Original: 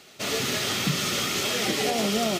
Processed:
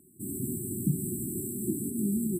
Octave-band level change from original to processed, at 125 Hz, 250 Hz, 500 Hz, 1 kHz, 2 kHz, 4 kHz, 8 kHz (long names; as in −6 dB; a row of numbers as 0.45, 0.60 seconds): 0.0 dB, 0.0 dB, −11.0 dB, below −40 dB, below −40 dB, below −40 dB, −6.5 dB